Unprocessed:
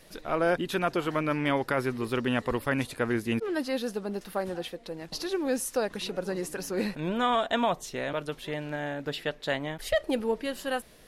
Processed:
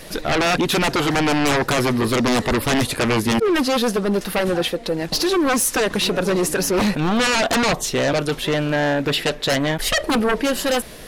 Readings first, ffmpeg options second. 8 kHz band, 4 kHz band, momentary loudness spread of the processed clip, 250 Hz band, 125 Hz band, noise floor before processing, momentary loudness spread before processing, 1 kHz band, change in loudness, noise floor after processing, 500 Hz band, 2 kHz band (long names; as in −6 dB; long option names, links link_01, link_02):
+16.5 dB, +15.0 dB, 4 LU, +11.0 dB, +11.5 dB, −53 dBFS, 7 LU, +9.0 dB, +11.0 dB, −36 dBFS, +9.0 dB, +11.5 dB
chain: -af "aeval=exprs='0.188*sin(PI/2*4.47*val(0)/0.188)':channel_layout=same"